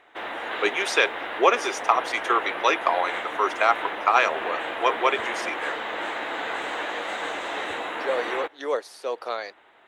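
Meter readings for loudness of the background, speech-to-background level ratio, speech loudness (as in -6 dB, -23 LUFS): -30.5 LUFS, 5.5 dB, -25.0 LUFS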